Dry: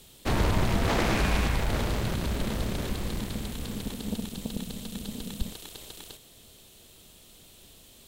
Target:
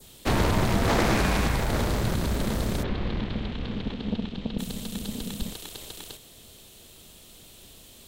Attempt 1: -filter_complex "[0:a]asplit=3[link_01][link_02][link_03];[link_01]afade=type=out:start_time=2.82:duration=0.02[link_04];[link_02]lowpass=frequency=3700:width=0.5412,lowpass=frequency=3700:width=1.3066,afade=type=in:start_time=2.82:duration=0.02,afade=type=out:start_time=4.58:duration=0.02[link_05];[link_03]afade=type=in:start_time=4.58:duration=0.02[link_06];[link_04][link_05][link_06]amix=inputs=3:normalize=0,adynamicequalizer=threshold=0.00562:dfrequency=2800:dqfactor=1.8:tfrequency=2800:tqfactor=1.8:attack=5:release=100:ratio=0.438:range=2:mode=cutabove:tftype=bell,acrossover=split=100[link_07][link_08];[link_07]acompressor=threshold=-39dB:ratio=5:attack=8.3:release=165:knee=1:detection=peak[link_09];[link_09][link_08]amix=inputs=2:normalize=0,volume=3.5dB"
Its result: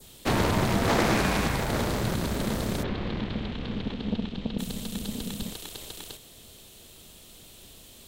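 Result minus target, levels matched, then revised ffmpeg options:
downward compressor: peak gain reduction +8 dB
-filter_complex "[0:a]asplit=3[link_01][link_02][link_03];[link_01]afade=type=out:start_time=2.82:duration=0.02[link_04];[link_02]lowpass=frequency=3700:width=0.5412,lowpass=frequency=3700:width=1.3066,afade=type=in:start_time=2.82:duration=0.02,afade=type=out:start_time=4.58:duration=0.02[link_05];[link_03]afade=type=in:start_time=4.58:duration=0.02[link_06];[link_04][link_05][link_06]amix=inputs=3:normalize=0,adynamicequalizer=threshold=0.00562:dfrequency=2800:dqfactor=1.8:tfrequency=2800:tqfactor=1.8:attack=5:release=100:ratio=0.438:range=2:mode=cutabove:tftype=bell,acrossover=split=100[link_07][link_08];[link_07]acompressor=threshold=-29dB:ratio=5:attack=8.3:release=165:knee=1:detection=peak[link_09];[link_09][link_08]amix=inputs=2:normalize=0,volume=3.5dB"

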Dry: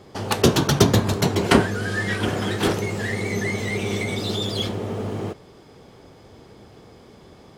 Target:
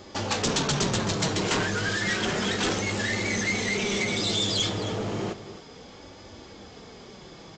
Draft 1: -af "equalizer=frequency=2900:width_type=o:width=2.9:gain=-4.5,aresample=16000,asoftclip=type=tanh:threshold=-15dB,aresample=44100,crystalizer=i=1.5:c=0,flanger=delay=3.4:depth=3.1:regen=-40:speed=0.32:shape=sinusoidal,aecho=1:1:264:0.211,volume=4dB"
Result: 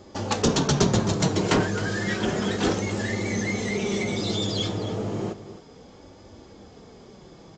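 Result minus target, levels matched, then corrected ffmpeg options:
soft clipping: distortion −6 dB; 4,000 Hz band −4.0 dB
-af "equalizer=frequency=2900:width_type=o:width=2.9:gain=4,aresample=16000,asoftclip=type=tanh:threshold=-24dB,aresample=44100,crystalizer=i=1.5:c=0,flanger=delay=3.4:depth=3.1:regen=-40:speed=0.32:shape=sinusoidal,aecho=1:1:264:0.211,volume=4dB"

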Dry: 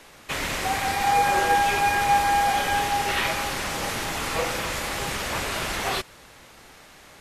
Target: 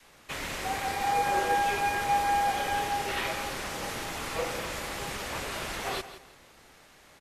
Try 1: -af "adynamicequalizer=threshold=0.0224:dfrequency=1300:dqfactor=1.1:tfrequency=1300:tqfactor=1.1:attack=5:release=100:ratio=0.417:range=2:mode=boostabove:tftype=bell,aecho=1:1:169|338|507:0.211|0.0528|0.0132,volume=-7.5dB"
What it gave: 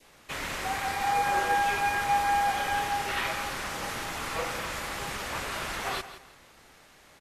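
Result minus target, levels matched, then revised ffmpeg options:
500 Hz band −3.0 dB
-af "adynamicequalizer=threshold=0.0224:dfrequency=440:dqfactor=1.1:tfrequency=440:tqfactor=1.1:attack=5:release=100:ratio=0.417:range=2:mode=boostabove:tftype=bell,aecho=1:1:169|338|507:0.211|0.0528|0.0132,volume=-7.5dB"

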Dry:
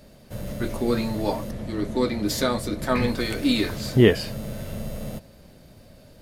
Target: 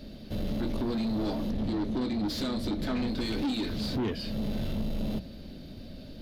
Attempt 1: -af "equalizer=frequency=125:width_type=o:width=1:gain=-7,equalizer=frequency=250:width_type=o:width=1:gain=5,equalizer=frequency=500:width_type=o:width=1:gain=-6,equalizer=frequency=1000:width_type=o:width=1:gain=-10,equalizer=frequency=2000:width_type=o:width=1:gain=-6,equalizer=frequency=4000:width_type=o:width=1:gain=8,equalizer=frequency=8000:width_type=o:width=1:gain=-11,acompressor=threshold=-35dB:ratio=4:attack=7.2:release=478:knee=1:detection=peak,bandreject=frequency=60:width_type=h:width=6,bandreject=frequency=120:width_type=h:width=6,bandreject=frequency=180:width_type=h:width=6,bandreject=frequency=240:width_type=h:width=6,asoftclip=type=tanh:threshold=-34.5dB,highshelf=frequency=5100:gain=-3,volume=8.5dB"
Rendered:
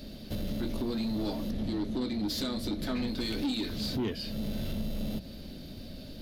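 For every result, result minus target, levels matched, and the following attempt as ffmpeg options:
8,000 Hz band +4.5 dB; downward compressor: peak gain reduction +4.5 dB
-af "equalizer=frequency=125:width_type=o:width=1:gain=-7,equalizer=frequency=250:width_type=o:width=1:gain=5,equalizer=frequency=500:width_type=o:width=1:gain=-6,equalizer=frequency=1000:width_type=o:width=1:gain=-10,equalizer=frequency=2000:width_type=o:width=1:gain=-6,equalizer=frequency=4000:width_type=o:width=1:gain=8,equalizer=frequency=8000:width_type=o:width=1:gain=-11,acompressor=threshold=-35dB:ratio=4:attack=7.2:release=478:knee=1:detection=peak,bandreject=frequency=60:width_type=h:width=6,bandreject=frequency=120:width_type=h:width=6,bandreject=frequency=180:width_type=h:width=6,bandreject=frequency=240:width_type=h:width=6,asoftclip=type=tanh:threshold=-34.5dB,highshelf=frequency=5100:gain=-12.5,volume=8.5dB"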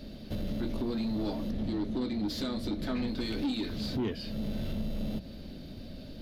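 downward compressor: peak gain reduction +4.5 dB
-af "equalizer=frequency=125:width_type=o:width=1:gain=-7,equalizer=frequency=250:width_type=o:width=1:gain=5,equalizer=frequency=500:width_type=o:width=1:gain=-6,equalizer=frequency=1000:width_type=o:width=1:gain=-10,equalizer=frequency=2000:width_type=o:width=1:gain=-6,equalizer=frequency=4000:width_type=o:width=1:gain=8,equalizer=frequency=8000:width_type=o:width=1:gain=-11,acompressor=threshold=-29dB:ratio=4:attack=7.2:release=478:knee=1:detection=peak,bandreject=frequency=60:width_type=h:width=6,bandreject=frequency=120:width_type=h:width=6,bandreject=frequency=180:width_type=h:width=6,bandreject=frequency=240:width_type=h:width=6,asoftclip=type=tanh:threshold=-34.5dB,highshelf=frequency=5100:gain=-12.5,volume=8.5dB"

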